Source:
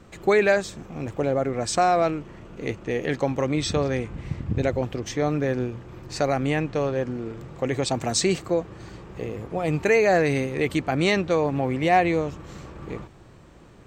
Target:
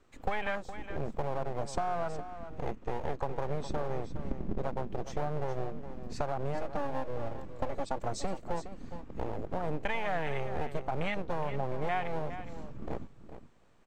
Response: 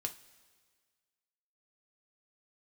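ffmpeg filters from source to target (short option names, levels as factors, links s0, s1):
-filter_complex "[0:a]afwtdn=0.0501,asettb=1/sr,asplit=3[s0][s1][s2];[s0]atrim=end=6.544[s3];[s1]atrim=start=6.54:end=8.04,asetpts=PTS-STARTPTS,afade=t=in:d=0.004:c=qsin,afade=t=out:st=1.496:d=0.004:c=qsin,aecho=1:1:3.5:0.86,atrim=end_sample=66150[s4];[s2]atrim=start=8.036[s5];[s3][s4]acrossfade=d=0.004:c1=hsin:c2=qsin[s6];[s6][s5]acrossfade=d=0.004:c1=qsin:c2=hsin,acompressor=threshold=0.0282:ratio=6,acrossover=split=600|2300[s7][s8][s9];[s7]aeval=exprs='abs(val(0))':c=same[s10];[s10][s8][s9]amix=inputs=3:normalize=0,aecho=1:1:414:0.266,volume=1.33"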